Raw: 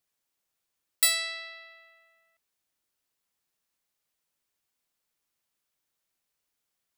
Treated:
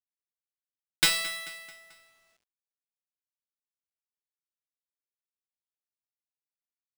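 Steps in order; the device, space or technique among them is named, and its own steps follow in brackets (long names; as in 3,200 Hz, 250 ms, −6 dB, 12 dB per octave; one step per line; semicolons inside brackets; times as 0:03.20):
repeating echo 219 ms, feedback 51%, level −18.5 dB
early companding sampler (sample-rate reduction 13,000 Hz, jitter 0%; log-companded quantiser 6 bits)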